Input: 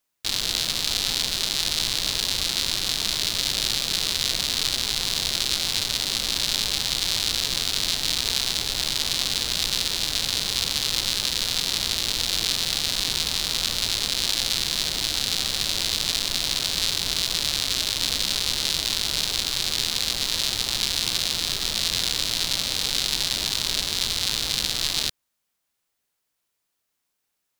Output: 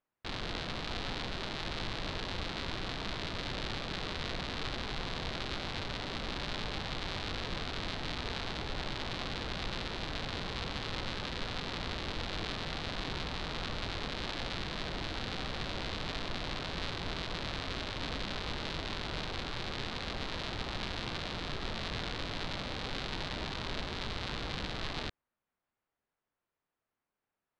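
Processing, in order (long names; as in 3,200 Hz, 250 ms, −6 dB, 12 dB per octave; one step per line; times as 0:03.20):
low-pass filter 1,600 Hz 12 dB per octave
level −2 dB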